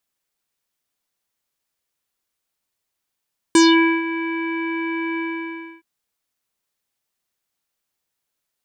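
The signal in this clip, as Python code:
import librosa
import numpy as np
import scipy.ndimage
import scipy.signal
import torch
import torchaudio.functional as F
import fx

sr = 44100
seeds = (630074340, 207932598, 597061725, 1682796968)

y = fx.sub_voice(sr, note=64, wave='square', cutoff_hz=2300.0, q=3.7, env_oct=2.0, env_s=0.22, attack_ms=2.5, decay_s=0.47, sustain_db=-14.5, release_s=0.64, note_s=1.63, slope=24)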